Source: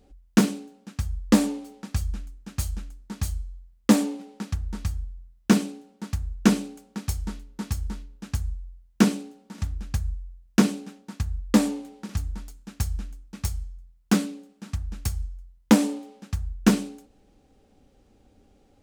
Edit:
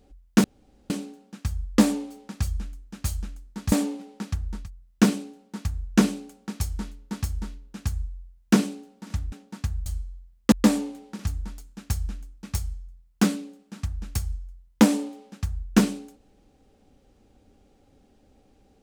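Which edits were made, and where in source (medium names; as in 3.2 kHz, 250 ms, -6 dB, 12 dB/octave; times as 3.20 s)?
0.44 s: insert room tone 0.46 s
3.26–3.92 s: move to 11.42 s
4.79–5.07 s: delete, crossfade 0.24 s
9.80–10.88 s: delete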